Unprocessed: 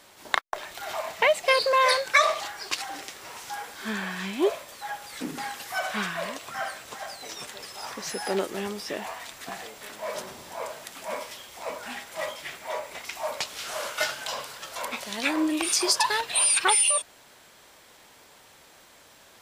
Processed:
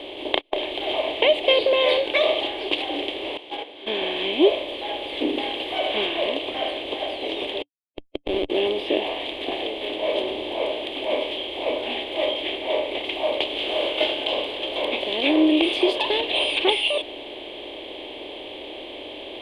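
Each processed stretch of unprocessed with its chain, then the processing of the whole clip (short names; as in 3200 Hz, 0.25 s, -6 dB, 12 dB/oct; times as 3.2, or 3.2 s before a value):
3.37–4.02 HPF 220 Hz 6 dB/oct + high shelf 10000 Hz -12 dB + gate -36 dBFS, range -18 dB
7.62–8.5 elliptic low-pass 1600 Hz, stop band 80 dB + Schmitt trigger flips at -26 dBFS
whole clip: per-bin compression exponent 0.6; EQ curve 110 Hz 0 dB, 170 Hz -15 dB, 290 Hz +9 dB, 720 Hz +4 dB, 1400 Hz -19 dB, 3200 Hz +11 dB, 5500 Hz -29 dB, 8200 Hz -26 dB, 13000 Hz -23 dB; gain -2 dB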